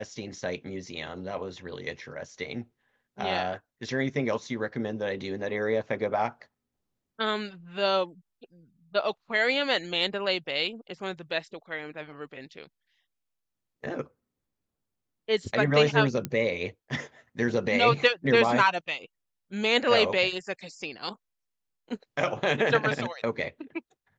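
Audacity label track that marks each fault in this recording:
16.250000	16.250000	click −15 dBFS

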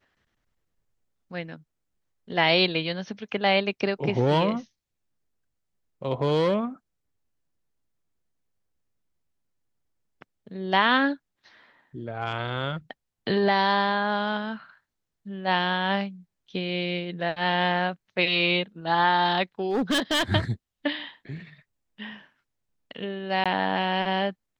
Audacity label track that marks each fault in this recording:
19.690000	20.230000	clipping −20.5 dBFS
23.440000	23.460000	drop-out 16 ms

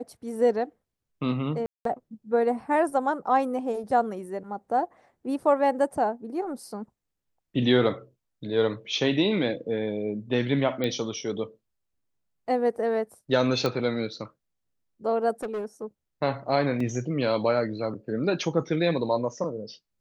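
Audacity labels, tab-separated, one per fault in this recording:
1.660000	1.850000	drop-out 193 ms
10.840000	10.840000	click −15 dBFS
13.660000	13.660000	click −13 dBFS
15.430000	15.840000	clipping −27.5 dBFS
16.800000	16.800000	drop-out 3.8 ms

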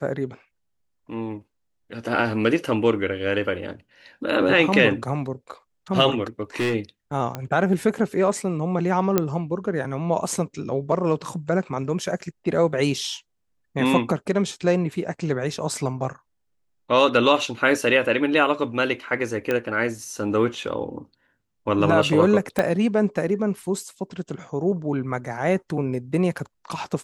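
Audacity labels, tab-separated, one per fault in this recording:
6.410000	6.740000	clipping −19 dBFS
7.350000	7.350000	click −14 dBFS
9.180000	9.180000	click −5 dBFS
19.510000	19.510000	click −11 dBFS
22.590000	22.590000	click −8 dBFS

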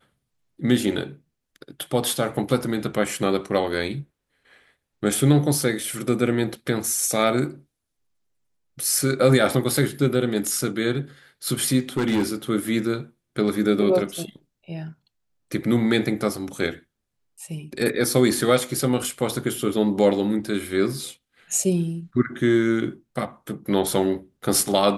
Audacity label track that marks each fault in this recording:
11.970000	12.350000	clipping −17 dBFS

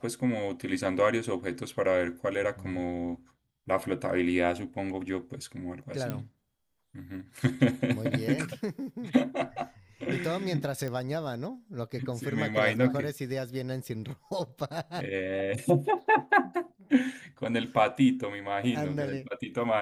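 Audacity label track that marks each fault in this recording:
6.100000	6.100000	click −19 dBFS
10.880000	10.880000	click −23 dBFS

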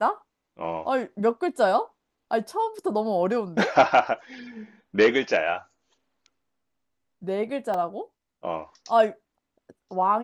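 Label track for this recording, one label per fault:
7.740000	7.740000	drop-out 2.7 ms

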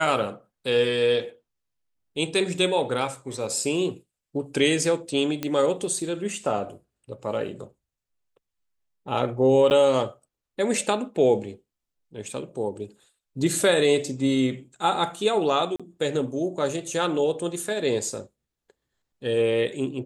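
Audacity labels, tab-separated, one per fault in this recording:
5.430000	5.430000	click −13 dBFS
9.700000	9.710000	drop-out 9.6 ms
15.760000	15.800000	drop-out 36 ms

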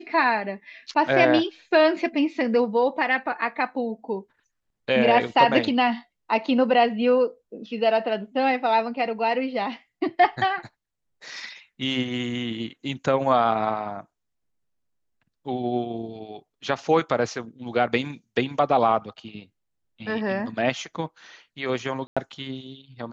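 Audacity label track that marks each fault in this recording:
22.070000	22.170000	drop-out 96 ms

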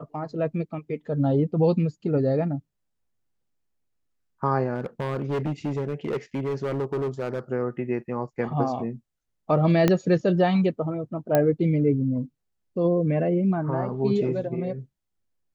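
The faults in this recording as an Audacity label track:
4.740000	7.390000	clipping −23 dBFS
9.880000	9.880000	click −7 dBFS
11.350000	11.350000	click −8 dBFS

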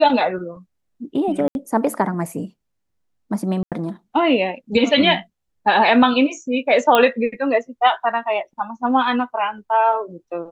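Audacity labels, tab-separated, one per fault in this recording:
1.480000	1.550000	drop-out 71 ms
3.630000	3.720000	drop-out 87 ms
6.950000	6.950000	click −3 dBFS

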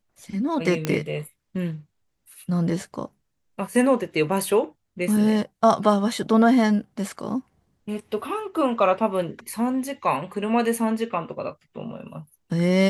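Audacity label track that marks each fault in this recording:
0.850000	0.850000	click −10 dBFS

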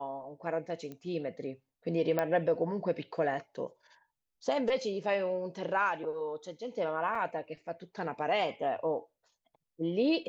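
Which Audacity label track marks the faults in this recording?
0.920000	0.920000	click −30 dBFS
2.190000	2.190000	click −17 dBFS
7.150000	7.150000	drop-out 3.3 ms

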